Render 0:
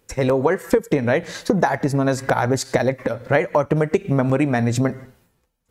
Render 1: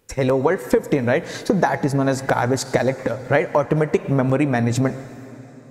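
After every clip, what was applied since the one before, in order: plate-style reverb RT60 4.2 s, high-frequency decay 0.8×, pre-delay 90 ms, DRR 15.5 dB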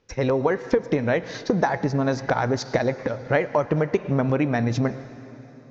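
steep low-pass 6.3 kHz 72 dB/octave; trim -3.5 dB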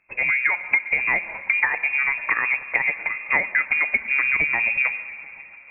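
repeats whose band climbs or falls 137 ms, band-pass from 160 Hz, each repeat 0.7 oct, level -11.5 dB; frequency inversion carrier 2.6 kHz

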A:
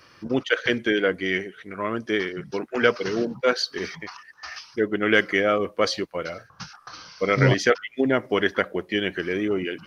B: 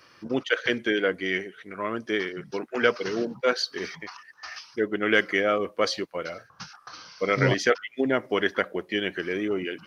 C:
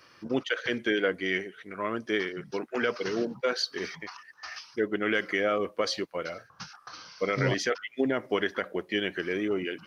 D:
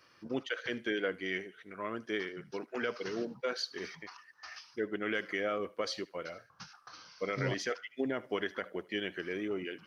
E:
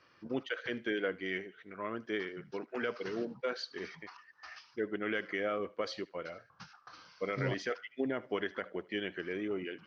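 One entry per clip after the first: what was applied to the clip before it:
bass shelf 110 Hz -9.5 dB; trim -2 dB
peak limiter -14 dBFS, peak gain reduction 7.5 dB; trim -1.5 dB
thinning echo 76 ms, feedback 26%, high-pass 1.1 kHz, level -19 dB; trim -7 dB
distance through air 130 m

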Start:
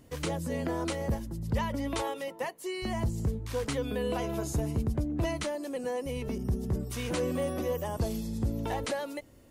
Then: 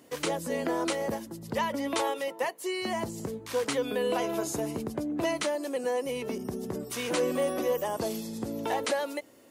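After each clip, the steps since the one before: high-pass 290 Hz 12 dB/octave; trim +4.5 dB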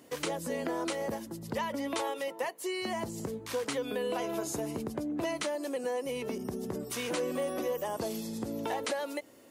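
compression 2:1, threshold -33 dBFS, peak gain reduction 5.5 dB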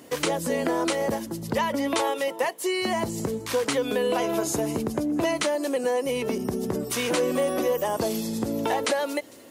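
feedback echo behind a high-pass 226 ms, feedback 54%, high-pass 4.5 kHz, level -17 dB; trim +8.5 dB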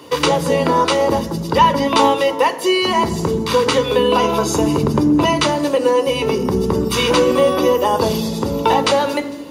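reverberation RT60 1.2 s, pre-delay 3 ms, DRR 9 dB; trim +7 dB

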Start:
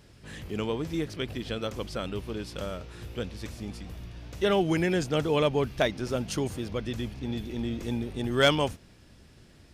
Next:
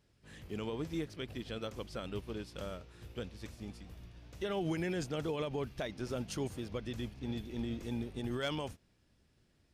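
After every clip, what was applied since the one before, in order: peak limiter -23 dBFS, peak gain reduction 11 dB; upward expansion 1.5:1, over -53 dBFS; trim -4 dB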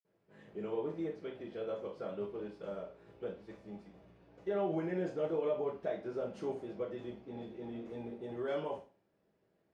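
band-pass filter 600 Hz, Q 1.2; reverberation RT60 0.35 s, pre-delay 47 ms; trim +17.5 dB

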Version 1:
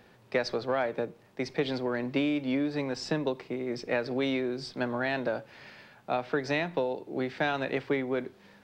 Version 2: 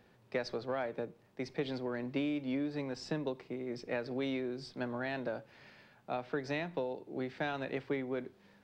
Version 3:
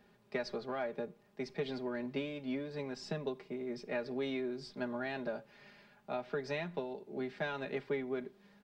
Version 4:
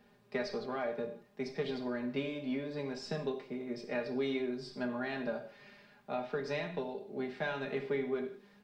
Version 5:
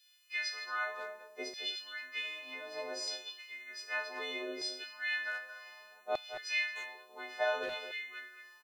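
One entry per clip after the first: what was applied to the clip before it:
bass shelf 410 Hz +3.5 dB; trim -8.5 dB
comb 4.9 ms, depth 72%; trim -3 dB
gated-style reverb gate 200 ms falling, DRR 4 dB
partials quantised in pitch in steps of 3 st; LFO high-pass saw down 0.65 Hz 480–3900 Hz; speakerphone echo 220 ms, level -9 dB; trim -1.5 dB

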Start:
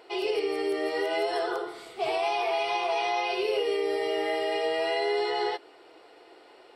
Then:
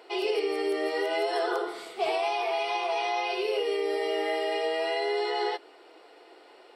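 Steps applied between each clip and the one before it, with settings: high-pass 230 Hz 12 dB/octave; gain riding within 4 dB 0.5 s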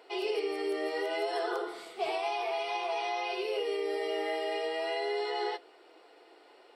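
flange 0.38 Hz, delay 4.2 ms, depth 2.9 ms, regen -83%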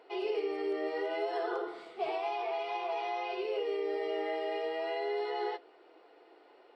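tape spacing loss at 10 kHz 21 dB

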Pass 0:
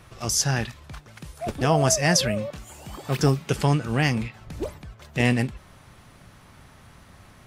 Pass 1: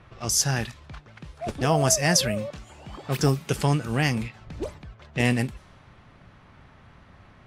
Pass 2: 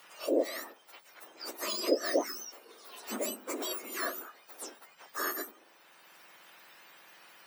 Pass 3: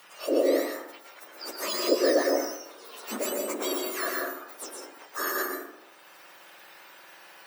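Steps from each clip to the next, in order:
level-controlled noise filter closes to 2.7 kHz, open at -21 dBFS; treble shelf 9.2 kHz +7.5 dB; trim -1.5 dB
spectrum inverted on a logarithmic axis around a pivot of 1.8 kHz; three bands compressed up and down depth 40%; trim -6.5 dB
plate-style reverb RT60 0.75 s, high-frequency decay 0.45×, pre-delay 105 ms, DRR 0 dB; trim +3 dB

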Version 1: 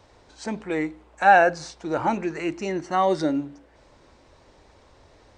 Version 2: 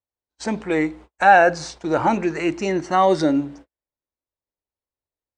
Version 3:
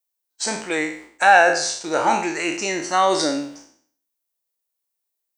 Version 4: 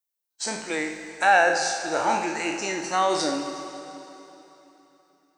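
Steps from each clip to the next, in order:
gate -46 dBFS, range -48 dB; in parallel at -1 dB: peak limiter -14 dBFS, peak gain reduction 10 dB
spectral sustain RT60 0.55 s; RIAA curve recording; trim -1 dB
reverberation RT60 3.5 s, pre-delay 58 ms, DRR 8 dB; trim -5 dB

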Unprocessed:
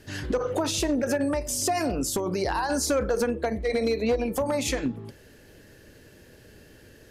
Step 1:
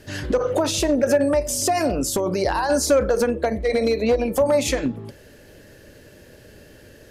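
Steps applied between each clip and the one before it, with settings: peaking EQ 580 Hz +6 dB 0.3 oct; trim +4 dB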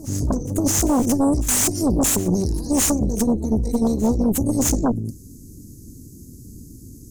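elliptic band-stop 280–6500 Hz, stop band 40 dB; Chebyshev shaper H 5 -7 dB, 6 -8 dB, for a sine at -13.5 dBFS; reverse echo 620 ms -18 dB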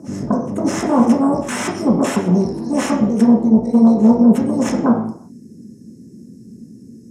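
band-pass 150–6200 Hz; reverberation RT60 0.60 s, pre-delay 3 ms, DRR -1.5 dB; trim -4 dB

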